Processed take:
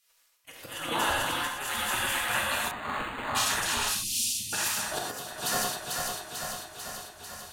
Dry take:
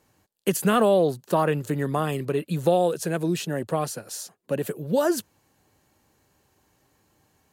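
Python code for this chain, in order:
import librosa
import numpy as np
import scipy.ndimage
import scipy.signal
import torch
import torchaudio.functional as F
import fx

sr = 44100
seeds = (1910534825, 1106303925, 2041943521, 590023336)

y = fx.reverse_delay_fb(x, sr, ms=222, feedback_pct=82, wet_db=-4.5)
y = fx.high_shelf(y, sr, hz=4000.0, db=-9.0, at=(0.73, 1.57))
y = fx.spec_gate(y, sr, threshold_db=-20, keep='weak')
y = fx.high_shelf(y, sr, hz=11000.0, db=-3.0)
y = fx.auto_swell(y, sr, attack_ms=316.0)
y = fx.cheby2_bandstop(y, sr, low_hz=490.0, high_hz=1700.0, order=4, stop_db=40, at=(3.91, 4.53))
y = fx.rev_gated(y, sr, seeds[0], gate_ms=140, shape='flat', drr_db=-1.0)
y = fx.resample_linear(y, sr, factor=8, at=(2.71, 3.35))
y = F.gain(torch.from_numpy(y), 5.0).numpy()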